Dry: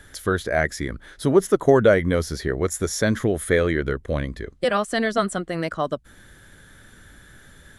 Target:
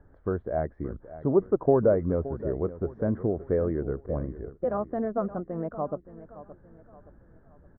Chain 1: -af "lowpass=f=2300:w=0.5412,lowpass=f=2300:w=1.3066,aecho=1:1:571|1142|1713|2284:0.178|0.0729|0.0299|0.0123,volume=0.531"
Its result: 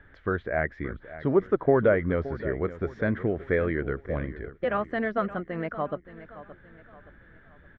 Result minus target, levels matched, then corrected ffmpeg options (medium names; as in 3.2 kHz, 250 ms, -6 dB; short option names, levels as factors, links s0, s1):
2 kHz band +16.0 dB
-af "lowpass=f=1000:w=0.5412,lowpass=f=1000:w=1.3066,aecho=1:1:571|1142|1713|2284:0.178|0.0729|0.0299|0.0123,volume=0.531"